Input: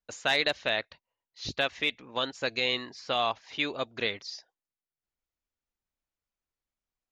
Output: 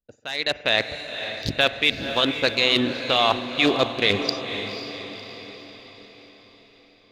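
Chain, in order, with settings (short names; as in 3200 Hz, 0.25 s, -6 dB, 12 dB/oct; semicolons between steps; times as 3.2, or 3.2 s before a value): Wiener smoothing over 41 samples; high shelf 4100 Hz +8.5 dB; reverse; compressor 16:1, threshold -36 dBFS, peak gain reduction 17 dB; reverse; limiter -28.5 dBFS, peak gain reduction 7 dB; AGC gain up to 15.5 dB; diffused feedback echo 0.52 s, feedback 50%, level -8.5 dB; on a send at -15 dB: reverb RT60 1.6 s, pre-delay 45 ms; on the sum: gain +6.5 dB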